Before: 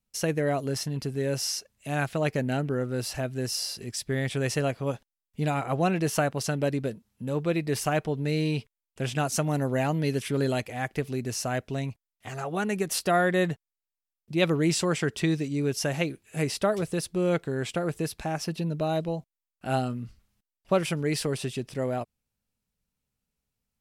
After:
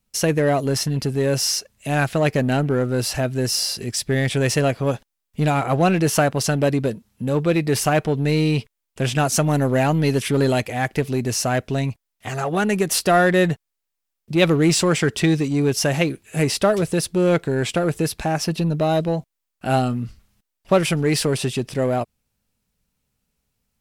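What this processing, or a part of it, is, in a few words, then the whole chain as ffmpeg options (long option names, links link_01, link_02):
parallel distortion: -filter_complex "[0:a]asplit=2[link_01][link_02];[link_02]asoftclip=type=hard:threshold=-29.5dB,volume=-6dB[link_03];[link_01][link_03]amix=inputs=2:normalize=0,volume=6dB"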